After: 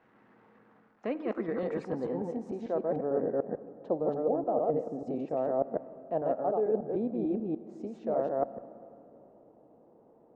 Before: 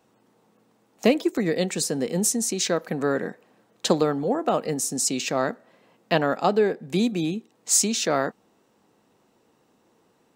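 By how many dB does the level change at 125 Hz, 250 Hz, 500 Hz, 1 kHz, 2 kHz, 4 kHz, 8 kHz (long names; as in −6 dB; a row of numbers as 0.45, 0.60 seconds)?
−11.0 dB, −8.0 dB, −4.5 dB, −7.5 dB, below −15 dB, below −30 dB, below −40 dB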